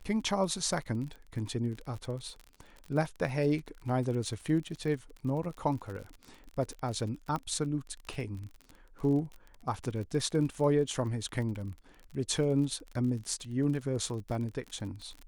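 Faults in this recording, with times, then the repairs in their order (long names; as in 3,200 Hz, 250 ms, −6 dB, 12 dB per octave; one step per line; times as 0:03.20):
surface crackle 41 per second −38 dBFS
0:07.36: click −22 dBFS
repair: click removal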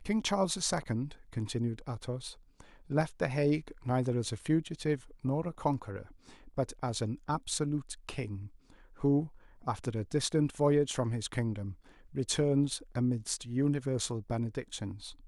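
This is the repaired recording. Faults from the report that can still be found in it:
none of them is left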